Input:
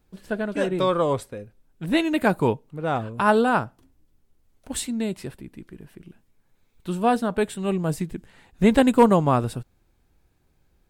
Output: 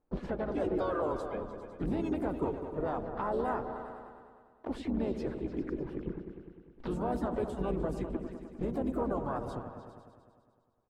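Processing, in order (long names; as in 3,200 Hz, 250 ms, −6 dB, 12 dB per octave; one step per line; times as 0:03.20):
sub-octave generator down 2 octaves, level +1 dB
reverb reduction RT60 1.8 s
de-essing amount 90%
low-pass that shuts in the quiet parts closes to 2,300 Hz, open at −17.5 dBFS
noise gate with hold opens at −49 dBFS
flat-topped bell 560 Hz +10 dB 2.6 octaves
downward compressor 4 to 1, threshold −32 dBFS, peak gain reduction 23 dB
brickwall limiter −29 dBFS, peak gain reduction 10.5 dB
on a send: echo whose low-pass opens from repeat to repeat 101 ms, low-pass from 400 Hz, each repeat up 2 octaves, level −6 dB
on the sum: pitch-shifted copies added −3 semitones −8 dB, +4 semitones −11 dB, +5 semitones −12 dB
level +2.5 dB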